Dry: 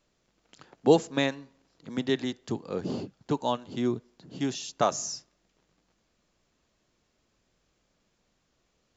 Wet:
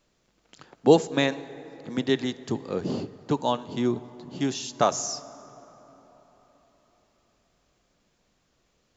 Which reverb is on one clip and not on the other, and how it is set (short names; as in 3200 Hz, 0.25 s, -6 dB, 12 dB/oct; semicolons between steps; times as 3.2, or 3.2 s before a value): plate-style reverb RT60 4.4 s, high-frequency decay 0.45×, DRR 16 dB; gain +3 dB